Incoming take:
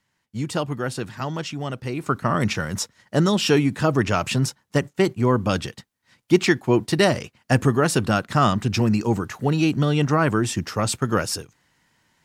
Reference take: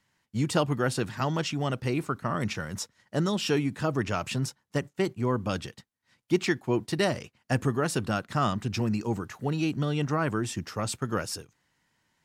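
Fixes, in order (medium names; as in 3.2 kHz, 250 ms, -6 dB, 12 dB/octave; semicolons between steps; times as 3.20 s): gain correction -8 dB, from 2.06 s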